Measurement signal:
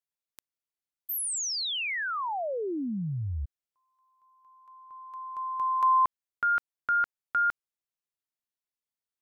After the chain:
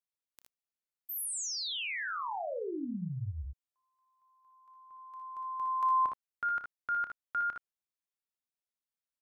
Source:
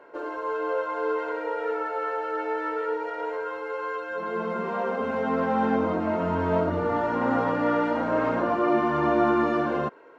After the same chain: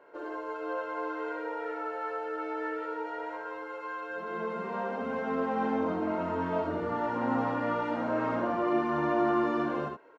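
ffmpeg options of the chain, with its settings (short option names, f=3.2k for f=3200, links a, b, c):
-af "aecho=1:1:29|60|76:0.251|0.531|0.398,volume=-7dB"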